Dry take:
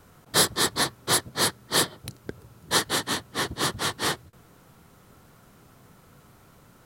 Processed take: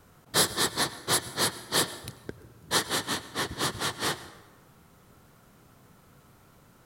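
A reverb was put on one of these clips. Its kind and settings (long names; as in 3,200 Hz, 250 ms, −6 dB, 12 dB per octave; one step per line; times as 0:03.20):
dense smooth reverb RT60 1.2 s, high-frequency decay 0.65×, pre-delay 85 ms, DRR 14.5 dB
level −3 dB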